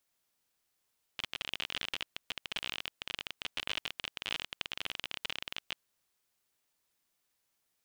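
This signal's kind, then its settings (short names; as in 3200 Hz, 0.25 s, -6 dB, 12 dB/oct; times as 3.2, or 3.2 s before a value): random clicks 35/s -19 dBFS 4.63 s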